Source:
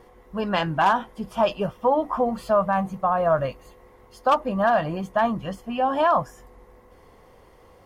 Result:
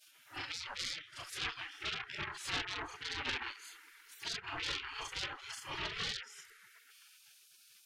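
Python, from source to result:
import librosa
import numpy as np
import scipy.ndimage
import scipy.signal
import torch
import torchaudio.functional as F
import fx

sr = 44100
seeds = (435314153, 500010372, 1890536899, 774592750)

y = fx.frame_reverse(x, sr, frame_ms=92.0)
y = fx.env_lowpass_down(y, sr, base_hz=1300.0, full_db=-18.5)
y = fx.dynamic_eq(y, sr, hz=2500.0, q=1.5, threshold_db=-45.0, ratio=4.0, max_db=-6)
y = fx.echo_wet_lowpass(y, sr, ms=125, feedback_pct=81, hz=490.0, wet_db=-15)
y = 10.0 ** (-25.0 / 20.0) * np.tanh(y / 10.0 ** (-25.0 / 20.0))
y = fx.spec_gate(y, sr, threshold_db=-30, keep='weak')
y = y * librosa.db_to_amplitude(12.0)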